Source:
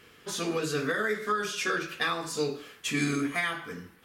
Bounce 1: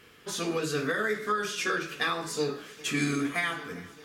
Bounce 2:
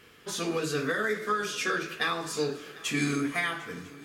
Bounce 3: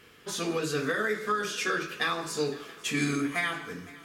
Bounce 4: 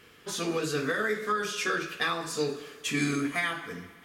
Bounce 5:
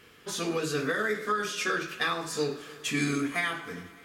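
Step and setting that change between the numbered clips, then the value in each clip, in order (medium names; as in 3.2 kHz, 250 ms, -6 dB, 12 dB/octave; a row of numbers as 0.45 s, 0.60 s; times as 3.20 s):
multi-head delay, time: 398 ms, 250 ms, 170 ms, 65 ms, 101 ms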